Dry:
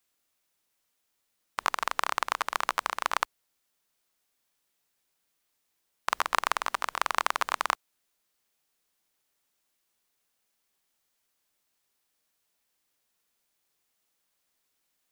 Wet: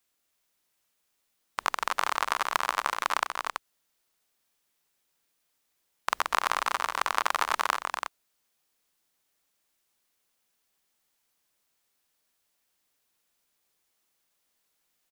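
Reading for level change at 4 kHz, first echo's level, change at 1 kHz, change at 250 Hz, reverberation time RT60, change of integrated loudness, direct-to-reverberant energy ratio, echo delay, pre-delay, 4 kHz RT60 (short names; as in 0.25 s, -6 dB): +1.5 dB, -8.0 dB, +1.5 dB, +1.5 dB, none, +1.0 dB, none, 0.241 s, none, none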